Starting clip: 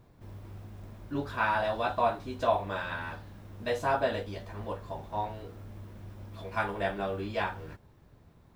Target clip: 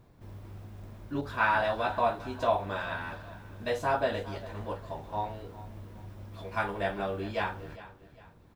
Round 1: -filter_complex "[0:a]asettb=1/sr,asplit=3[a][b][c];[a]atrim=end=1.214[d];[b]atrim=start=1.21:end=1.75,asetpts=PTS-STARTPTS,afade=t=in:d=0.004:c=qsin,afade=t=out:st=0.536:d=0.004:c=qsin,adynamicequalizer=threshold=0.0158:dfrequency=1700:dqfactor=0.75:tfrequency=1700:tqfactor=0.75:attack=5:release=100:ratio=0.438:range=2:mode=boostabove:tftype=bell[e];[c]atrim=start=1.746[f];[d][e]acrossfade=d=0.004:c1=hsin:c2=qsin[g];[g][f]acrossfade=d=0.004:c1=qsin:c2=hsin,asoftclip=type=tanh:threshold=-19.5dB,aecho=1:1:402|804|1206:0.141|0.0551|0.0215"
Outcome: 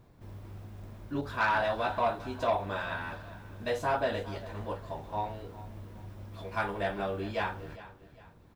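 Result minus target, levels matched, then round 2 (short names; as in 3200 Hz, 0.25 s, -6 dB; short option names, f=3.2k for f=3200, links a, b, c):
soft clip: distortion +17 dB
-filter_complex "[0:a]asettb=1/sr,asplit=3[a][b][c];[a]atrim=end=1.214[d];[b]atrim=start=1.21:end=1.75,asetpts=PTS-STARTPTS,afade=t=in:d=0.004:c=qsin,afade=t=out:st=0.536:d=0.004:c=qsin,adynamicequalizer=threshold=0.0158:dfrequency=1700:dqfactor=0.75:tfrequency=1700:tqfactor=0.75:attack=5:release=100:ratio=0.438:range=2:mode=boostabove:tftype=bell[e];[c]atrim=start=1.746[f];[d][e]acrossfade=d=0.004:c1=hsin:c2=qsin[g];[g][f]acrossfade=d=0.004:c1=qsin:c2=hsin,asoftclip=type=tanh:threshold=-9dB,aecho=1:1:402|804|1206:0.141|0.0551|0.0215"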